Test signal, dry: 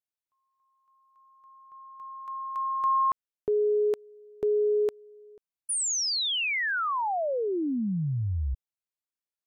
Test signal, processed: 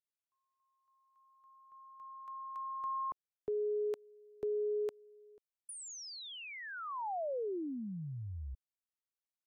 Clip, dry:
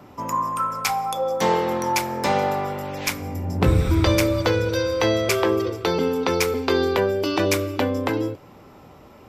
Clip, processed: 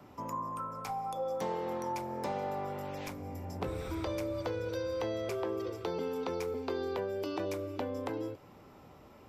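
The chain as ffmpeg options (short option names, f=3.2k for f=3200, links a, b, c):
-filter_complex "[0:a]acrossover=split=400|950[a][b][c];[a]acompressor=threshold=-33dB:ratio=4[d];[b]acompressor=threshold=-27dB:ratio=4[e];[c]acompressor=threshold=-40dB:ratio=4[f];[d][e][f]amix=inputs=3:normalize=0,volume=-8.5dB"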